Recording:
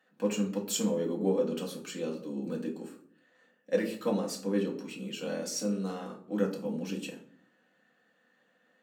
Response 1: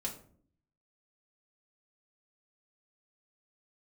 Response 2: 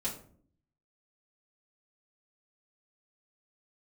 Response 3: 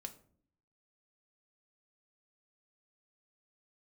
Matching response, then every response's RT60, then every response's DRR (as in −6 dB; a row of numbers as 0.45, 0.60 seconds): 1; 0.55, 0.55, 0.55 seconds; −2.0, −7.0, 5.5 decibels